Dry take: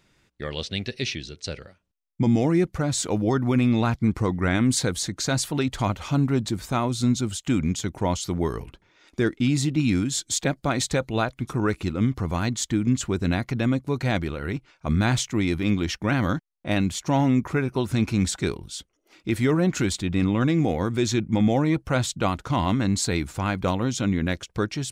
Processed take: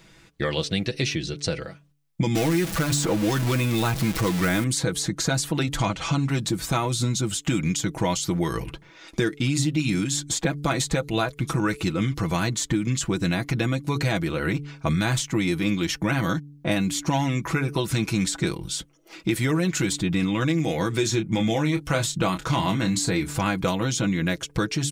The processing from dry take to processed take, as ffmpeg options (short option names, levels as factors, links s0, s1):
-filter_complex "[0:a]asettb=1/sr,asplit=3[s0][s1][s2];[s0]atrim=end=2.354[s3];[s1]atrim=start=2.35:end=4.64,asetpts=PTS-STARTPTS,afade=t=in:d=0.004:c=qsin,afade=t=out:st=2.286:d=0.004:c=qsin,aeval=exprs='val(0)+0.5*0.0473*sgn(val(0))':c=same[s4];[s2]atrim=start=4.636[s5];[s3][s4]acrossfade=d=0.004:c1=hsin:c2=qsin[s6];[s6][s5]acrossfade=d=0.004:c1=qsin:c2=hsin,asettb=1/sr,asplit=3[s7][s8][s9];[s7]atrim=end=5.774[s10];[s8]atrim=start=5.77:end=6.29,asetpts=PTS-STARTPTS,afade=t=in:d=0.004:c=qsin,afade=t=out:st=0.516:d=0.004:c=qsin,lowpass=f=8600:w=0.5412,lowpass=f=8600:w=1.3066[s11];[s9]atrim=start=6.286[s12];[s10][s11]acrossfade=d=0.004:c1=hsin:c2=qsin[s13];[s13][s12]acrossfade=d=0.004:c1=qsin:c2=hsin,asettb=1/sr,asplit=3[s14][s15][s16];[s14]atrim=end=20.964[s17];[s15]atrim=start=20.96:end=23.35,asetpts=PTS-STARTPTS,afade=t=in:d=0.004:c=qsin,afade=t=out:st=2.386:d=0.004:c=qsin,asplit=2[s18][s19];[s19]adelay=27,volume=0.376[s20];[s18][s20]amix=inputs=2:normalize=0,atrim=end_sample=105399[s21];[s16]atrim=start=23.346[s22];[s17][s21]acrossfade=d=0.004:c1=hsin:c2=qsin[s23];[s23][s22]acrossfade=d=0.004:c1=qsin:c2=hsin,aecho=1:1:6.1:0.62,bandreject=f=144.9:t=h:w=4,bandreject=f=289.8:t=h:w=4,bandreject=f=434.7:t=h:w=4,acrossover=split=1800|7300[s24][s25][s26];[s24]acompressor=threshold=0.0251:ratio=4[s27];[s25]acompressor=threshold=0.00891:ratio=4[s28];[s26]acompressor=threshold=0.00794:ratio=4[s29];[s27][s28][s29]amix=inputs=3:normalize=0,volume=2.82"